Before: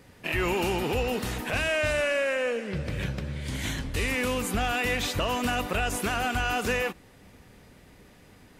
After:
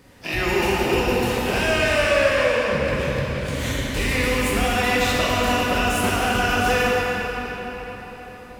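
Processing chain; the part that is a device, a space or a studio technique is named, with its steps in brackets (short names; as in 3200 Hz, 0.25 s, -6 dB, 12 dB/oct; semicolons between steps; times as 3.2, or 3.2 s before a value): shimmer-style reverb (harmoniser +12 st -12 dB; reverb RT60 4.9 s, pre-delay 7 ms, DRR -5 dB); gain +1 dB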